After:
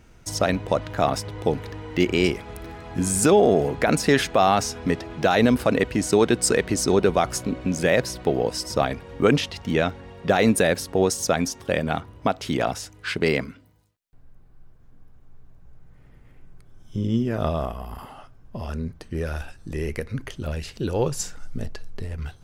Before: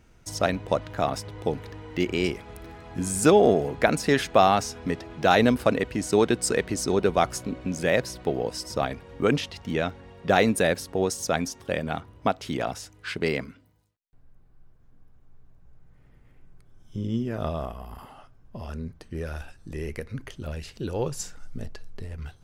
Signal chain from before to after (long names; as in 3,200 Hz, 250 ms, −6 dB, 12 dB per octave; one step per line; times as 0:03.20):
brickwall limiter −12 dBFS, peak gain reduction 8.5 dB
level +5 dB